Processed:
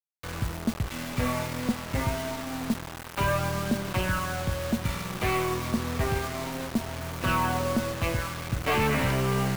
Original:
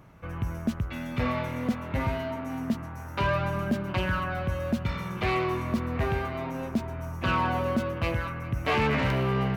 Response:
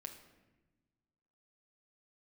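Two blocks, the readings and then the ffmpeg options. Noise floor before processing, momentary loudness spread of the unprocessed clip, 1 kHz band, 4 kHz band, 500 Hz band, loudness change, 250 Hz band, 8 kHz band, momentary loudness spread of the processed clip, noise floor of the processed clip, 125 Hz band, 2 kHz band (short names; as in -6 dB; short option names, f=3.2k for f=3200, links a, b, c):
-39 dBFS, 7 LU, 0.0 dB, +3.5 dB, 0.0 dB, +0.5 dB, 0.0 dB, +14.0 dB, 7 LU, -40 dBFS, 0.0 dB, +0.5 dB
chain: -af "aeval=exprs='0.158*(cos(1*acos(clip(val(0)/0.158,-1,1)))-cos(1*PI/2))+0.00708*(cos(6*acos(clip(val(0)/0.158,-1,1)))-cos(6*PI/2))+0.00447*(cos(7*acos(clip(val(0)/0.158,-1,1)))-cos(7*PI/2))':c=same,acrusher=bits=5:mix=0:aa=0.000001"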